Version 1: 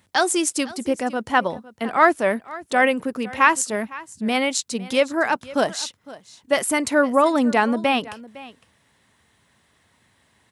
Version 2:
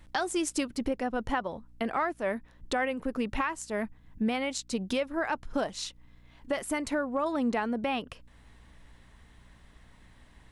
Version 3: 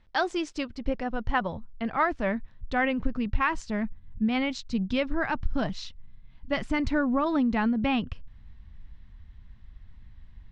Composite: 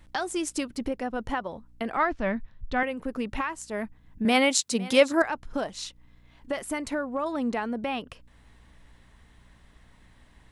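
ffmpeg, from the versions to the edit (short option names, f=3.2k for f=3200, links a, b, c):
-filter_complex "[1:a]asplit=3[a][b][c];[a]atrim=end=1.972[d];[2:a]atrim=start=1.968:end=2.832[e];[b]atrim=start=2.828:end=4.252[f];[0:a]atrim=start=4.248:end=5.222[g];[c]atrim=start=5.218[h];[d][e]acrossfade=d=0.004:c1=hsin:c2=hsin[i];[i][f]acrossfade=d=0.004:c1=hsin:c2=hsin[j];[j][g]acrossfade=d=0.004:c1=hsin:c2=hsin[k];[k][h]acrossfade=d=0.004:c1=hsin:c2=hsin"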